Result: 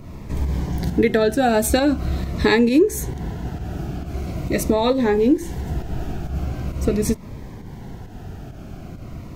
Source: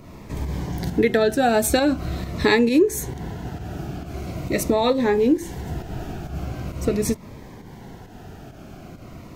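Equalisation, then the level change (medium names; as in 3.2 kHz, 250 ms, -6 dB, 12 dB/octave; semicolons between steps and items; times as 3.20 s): dynamic bell 100 Hz, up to -5 dB, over -38 dBFS, Q 1.2; bass shelf 160 Hz +10 dB; 0.0 dB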